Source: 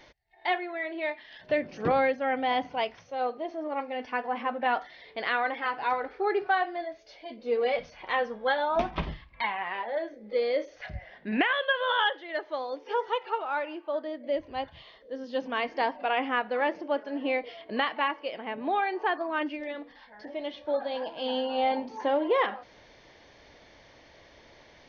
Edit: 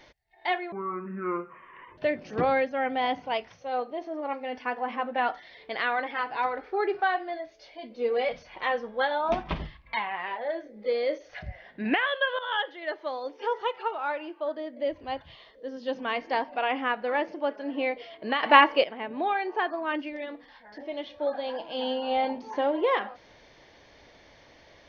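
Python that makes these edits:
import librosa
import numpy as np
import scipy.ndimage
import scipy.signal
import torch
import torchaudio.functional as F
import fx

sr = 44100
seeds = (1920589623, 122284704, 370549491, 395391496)

y = fx.edit(x, sr, fx.speed_span(start_s=0.72, length_s=0.73, speed=0.58),
    fx.fade_in_from(start_s=11.86, length_s=0.4, curve='qsin', floor_db=-14.0),
    fx.clip_gain(start_s=17.9, length_s=0.41, db=12.0), tone=tone)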